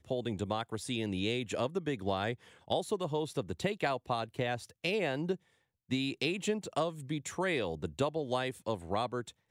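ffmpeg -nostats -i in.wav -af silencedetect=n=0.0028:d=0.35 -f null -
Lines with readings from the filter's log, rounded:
silence_start: 5.36
silence_end: 5.89 | silence_duration: 0.53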